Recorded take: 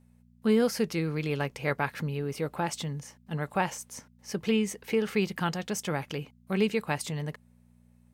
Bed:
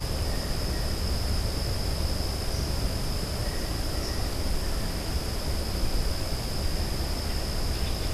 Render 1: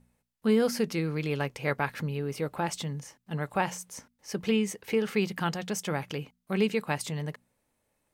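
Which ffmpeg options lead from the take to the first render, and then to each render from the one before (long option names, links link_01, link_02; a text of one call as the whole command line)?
ffmpeg -i in.wav -af "bandreject=frequency=60:width_type=h:width=4,bandreject=frequency=120:width_type=h:width=4,bandreject=frequency=180:width_type=h:width=4,bandreject=frequency=240:width_type=h:width=4" out.wav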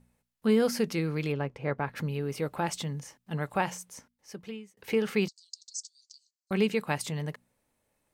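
ffmpeg -i in.wav -filter_complex "[0:a]asplit=3[link_01][link_02][link_03];[link_01]afade=type=out:start_time=1.31:duration=0.02[link_04];[link_02]lowpass=frequency=1000:poles=1,afade=type=in:start_time=1.31:duration=0.02,afade=type=out:start_time=1.95:duration=0.02[link_05];[link_03]afade=type=in:start_time=1.95:duration=0.02[link_06];[link_04][link_05][link_06]amix=inputs=3:normalize=0,asettb=1/sr,asplit=3[link_07][link_08][link_09];[link_07]atrim=end=5.284[link_10];[link_08]atrim=start=5.28:end=6.51,asetpts=PTS-STARTPTS,afade=type=in:duration=0.004:curve=qsin,afade=type=out:start_time=1.226:duration=0.004:curve=qsin,asuperpass=centerf=5900:order=12:qfactor=1.5[link_11];[link_09]atrim=start=6.506[link_12];[link_10][link_11]acrossfade=duration=0.004:curve1=hsin:curve2=qsin[link_13];[link_13][link_12]acrossfade=duration=0.004:curve1=qsin:curve2=hsin,asplit=2[link_14][link_15];[link_14]atrim=end=4.77,asetpts=PTS-STARTPTS,afade=type=out:start_time=3.53:duration=1.24[link_16];[link_15]atrim=start=4.77,asetpts=PTS-STARTPTS,afade=type=in:duration=0.004:curve=hsin[link_17];[link_16][link_17]concat=n=2:v=0:a=1" out.wav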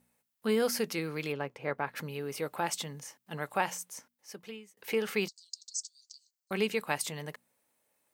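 ffmpeg -i in.wav -af "highpass=frequency=440:poles=1,highshelf=frequency=12000:gain=10" out.wav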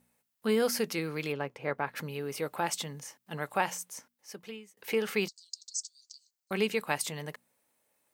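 ffmpeg -i in.wav -af "volume=1dB" out.wav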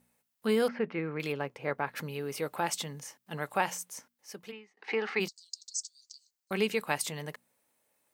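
ffmpeg -i in.wav -filter_complex "[0:a]asettb=1/sr,asplit=3[link_01][link_02][link_03];[link_01]atrim=end=0.684[link_04];[link_02]atrim=start=0.68:end=1.2,asetpts=PTS-STARTPTS,afade=type=in:duration=0.004:curve=qsin,afade=type=out:start_time=0.516:duration=0.004:curve=qsin,lowpass=frequency=2300:width=0.5412,lowpass=frequency=2300:width=1.3066[link_05];[link_03]atrim=start=1.196[link_06];[link_04][link_05]acrossfade=duration=0.004:curve1=hsin:curve2=qsin[link_07];[link_07][link_06]acrossfade=duration=0.004:curve1=qsin:curve2=hsin,asplit=3[link_08][link_09][link_10];[link_08]afade=type=out:start_time=4.51:duration=0.02[link_11];[link_09]highpass=frequency=240:width=0.5412,highpass=frequency=240:width=1.3066,equalizer=frequency=540:width_type=q:width=4:gain=-9,equalizer=frequency=790:width_type=q:width=4:gain=9,equalizer=frequency=1200:width_type=q:width=4:gain=3,equalizer=frequency=1900:width_type=q:width=4:gain=6,equalizer=frequency=3300:width_type=q:width=4:gain=-6,lowpass=frequency=4600:width=0.5412,lowpass=frequency=4600:width=1.3066,afade=type=in:start_time=4.51:duration=0.02,afade=type=out:start_time=5.19:duration=0.02[link_12];[link_10]afade=type=in:start_time=5.19:duration=0.02[link_13];[link_11][link_12][link_13]amix=inputs=3:normalize=0" out.wav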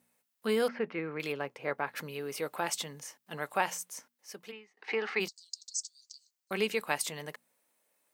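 ffmpeg -i in.wav -af "highpass=frequency=270:poles=1,bandreject=frequency=840:width=26" out.wav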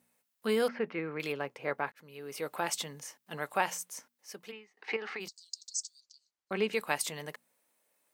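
ffmpeg -i in.wav -filter_complex "[0:a]asettb=1/sr,asplit=3[link_01][link_02][link_03];[link_01]atrim=end=4.964[link_04];[link_02]atrim=start=4.96:end=5.39,asetpts=PTS-STARTPTS,afade=type=in:duration=0.004:curve=qsin,afade=type=out:start_time=0.426:duration=0.004:curve=qsin,acompressor=threshold=-36dB:ratio=6:attack=3.2:release=140:knee=1:detection=peak[link_05];[link_03]atrim=start=5.386[link_06];[link_04][link_05]acrossfade=duration=0.004:curve1=hsin:curve2=qsin[link_07];[link_07][link_06]acrossfade=duration=0.004:curve1=qsin:curve2=hsin,asettb=1/sr,asplit=3[link_08][link_09][link_10];[link_08]atrim=end=6.004[link_11];[link_09]atrim=start=6:end=6.73,asetpts=PTS-STARTPTS,afade=type=in:duration=0.004:curve=qsin,afade=type=out:start_time=0.726:duration=0.004:curve=qsin,aemphasis=mode=reproduction:type=75fm[link_12];[link_10]atrim=start=6.726[link_13];[link_11][link_12]acrossfade=duration=0.004:curve1=hsin:curve2=qsin[link_14];[link_14][link_13]acrossfade=duration=0.004:curve1=qsin:curve2=hsin,asplit=2[link_15][link_16];[link_15]atrim=end=1.92,asetpts=PTS-STARTPTS,afade=type=out:start_time=1.916:duration=0.004:curve=hsin[link_17];[link_16]atrim=start=1.92,asetpts=PTS-STARTPTS,afade=type=in:duration=0.61[link_18];[link_17][link_18]concat=n=2:v=0:a=1" out.wav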